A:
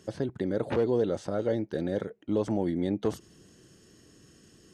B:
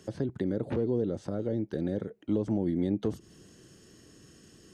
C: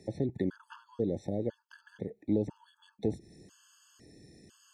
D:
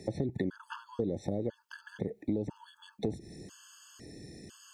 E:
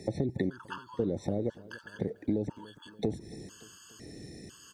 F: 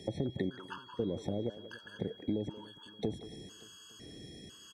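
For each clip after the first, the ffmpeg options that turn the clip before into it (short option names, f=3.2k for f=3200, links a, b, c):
-filter_complex "[0:a]acrossover=split=390[a][b];[b]acompressor=threshold=-41dB:ratio=10[c];[a][c]amix=inputs=2:normalize=0,volume=1.5dB"
-af "afftfilt=real='re*gt(sin(2*PI*1*pts/sr)*(1-2*mod(floor(b*sr/1024/870),2)),0)':imag='im*gt(sin(2*PI*1*pts/sr)*(1-2*mod(floor(b*sr/1024/870),2)),0)':win_size=1024:overlap=0.75"
-filter_complex "[0:a]asplit=2[a][b];[b]alimiter=level_in=3dB:limit=-24dB:level=0:latency=1:release=101,volume=-3dB,volume=2.5dB[c];[a][c]amix=inputs=2:normalize=0,acompressor=threshold=-29dB:ratio=4"
-af "aecho=1:1:288|576|864|1152:0.1|0.053|0.0281|0.0149,volume=2dB"
-filter_complex "[0:a]asplit=2[a][b];[b]adelay=180,highpass=300,lowpass=3.4k,asoftclip=type=hard:threshold=-25dB,volume=-13dB[c];[a][c]amix=inputs=2:normalize=0,aeval=exprs='val(0)+0.00282*sin(2*PI*3300*n/s)':c=same,volume=-4dB"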